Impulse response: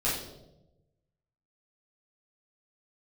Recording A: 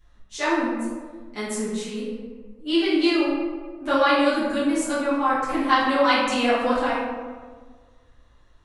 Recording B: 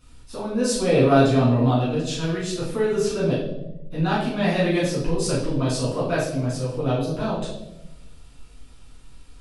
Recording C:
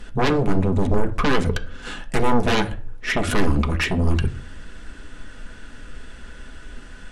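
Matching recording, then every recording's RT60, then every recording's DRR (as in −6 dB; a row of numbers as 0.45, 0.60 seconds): B; 1.6, 0.95, 0.45 seconds; −11.5, −9.5, 5.0 decibels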